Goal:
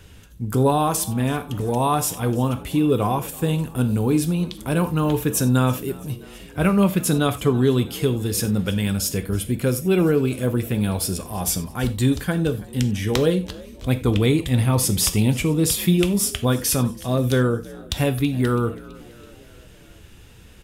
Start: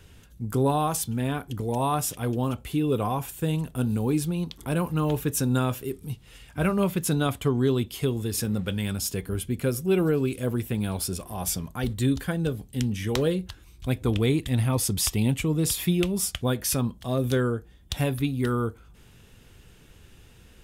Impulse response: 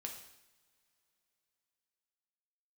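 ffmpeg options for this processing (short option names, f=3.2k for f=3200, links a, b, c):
-filter_complex "[0:a]asplit=5[a][b][c][d][e];[b]adelay=329,afreqshift=52,volume=-21.5dB[f];[c]adelay=658,afreqshift=104,volume=-26.4dB[g];[d]adelay=987,afreqshift=156,volume=-31.3dB[h];[e]adelay=1316,afreqshift=208,volume=-36.1dB[i];[a][f][g][h][i]amix=inputs=5:normalize=0,asplit=2[j][k];[1:a]atrim=start_sample=2205,atrim=end_sample=4410[l];[k][l]afir=irnorm=-1:irlink=0,volume=2.5dB[m];[j][m]amix=inputs=2:normalize=0"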